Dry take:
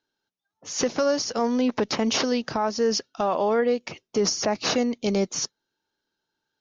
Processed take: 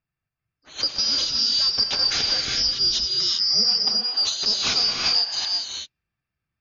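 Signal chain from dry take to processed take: four-band scrambler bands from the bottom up 2341; 2.1–2.58 bell 980 Hz -12.5 dB 0.89 oct; low-pass opened by the level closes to 1600 Hz, open at -18.5 dBFS; non-linear reverb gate 0.42 s rising, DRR -0.5 dB

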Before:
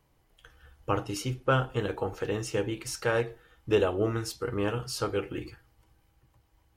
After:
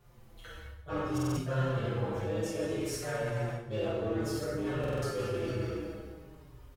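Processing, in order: harmoniser +4 st -6 dB; low shelf 110 Hz -4.5 dB; in parallel at -9.5 dB: wavefolder -25.5 dBFS; on the sum: plate-style reverb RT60 1.7 s, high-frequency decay 0.75×, DRR -7.5 dB; reverse; compressor 4:1, threshold -33 dBFS, peak gain reduction 18 dB; reverse; low shelf 280 Hz +7.5 dB; stuck buffer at 1.13/4.79, samples 2048, times 4; endless flanger 5.3 ms -0.57 Hz

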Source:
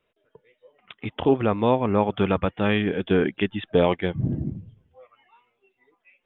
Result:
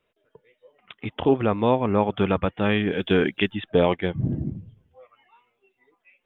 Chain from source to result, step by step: 2.9–3.52 high shelf 2600 Hz -> 2900 Hz +11 dB

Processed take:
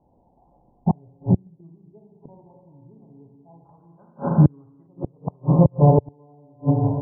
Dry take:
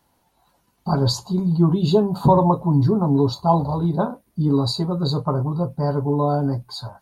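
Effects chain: Schroeder reverb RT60 1.8 s, combs from 32 ms, DRR 1.5 dB; flipped gate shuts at -11 dBFS, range -39 dB; steep low-pass 850 Hz 48 dB/oct, from 3.64 s 1800 Hz, from 4.86 s 960 Hz; dynamic EQ 100 Hz, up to +7 dB, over -40 dBFS, Q 1; gain +5 dB

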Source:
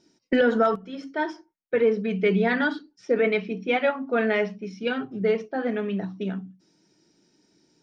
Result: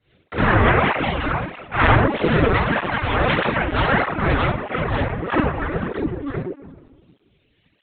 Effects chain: high shelf 2500 Hz +9 dB; noise vocoder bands 3; notches 50/100/150/200/250 Hz; echoes that change speed 0.256 s, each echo +3 st, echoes 3; reverb removal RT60 0.56 s; reverb RT60 1.7 s, pre-delay 40 ms, DRR -13 dB; reverb removal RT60 1.7 s; in parallel at -11 dB: soft clip -7.5 dBFS, distortion -13 dB; on the sum: LPC vocoder at 8 kHz pitch kept; air absorption 110 m; tape flanging out of phase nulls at 1.6 Hz, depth 6.1 ms; gain -4 dB

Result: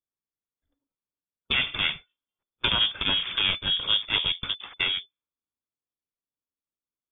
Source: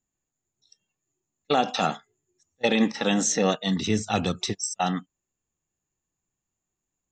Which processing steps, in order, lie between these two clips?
minimum comb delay 0.9 ms; inverted band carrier 3500 Hz; low-pass opened by the level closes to 740 Hz, open at -25 dBFS

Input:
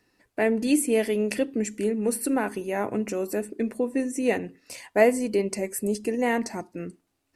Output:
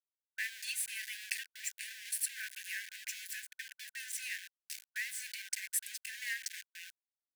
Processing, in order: compressor 6:1, threshold -26 dBFS, peak gain reduction 13 dB; sample gate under -35 dBFS; brick-wall FIR high-pass 1500 Hz

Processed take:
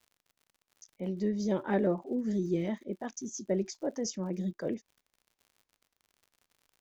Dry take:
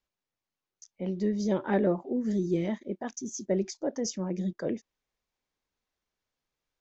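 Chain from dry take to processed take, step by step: crackle 79/s -48 dBFS; gain -2.5 dB

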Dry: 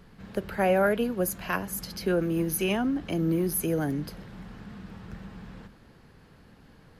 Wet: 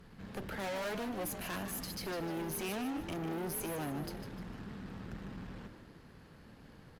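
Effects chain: tube stage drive 37 dB, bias 0.55; frequency-shifting echo 0.151 s, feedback 40%, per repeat +64 Hz, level -9 dB

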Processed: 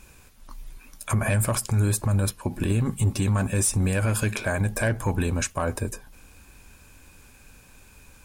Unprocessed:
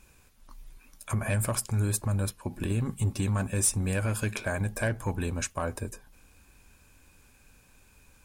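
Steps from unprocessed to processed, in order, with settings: limiter -22.5 dBFS, peak gain reduction 7 dB; gain +7.5 dB

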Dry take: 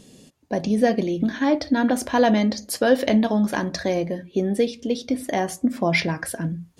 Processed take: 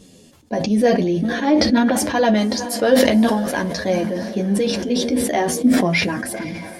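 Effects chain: diffused feedback echo 0.503 s, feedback 54%, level -16 dB; chorus voices 2, 0.47 Hz, delay 11 ms, depth 2.1 ms; sustainer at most 37 dB/s; gain +4.5 dB

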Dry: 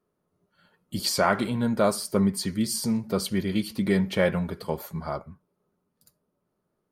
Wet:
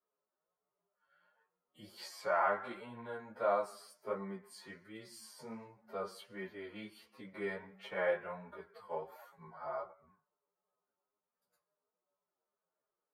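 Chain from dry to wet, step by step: three-band isolator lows -22 dB, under 480 Hz, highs -18 dB, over 2200 Hz; time stretch by phase-locked vocoder 1.9×; chorus 1.4 Hz, delay 15.5 ms, depth 4.3 ms; gain -4 dB

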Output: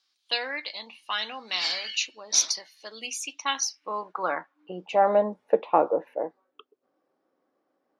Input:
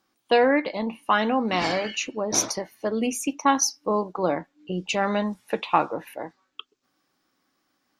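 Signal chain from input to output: band-pass sweep 4200 Hz -> 510 Hz, 3.23–5.32; gain +8 dB

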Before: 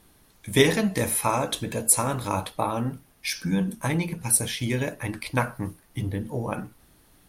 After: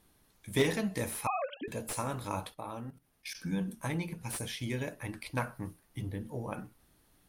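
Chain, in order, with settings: 1.27–1.68 sine-wave speech; 2.54–3.35 level quantiser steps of 16 dB; slew limiter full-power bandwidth 320 Hz; gain -9 dB

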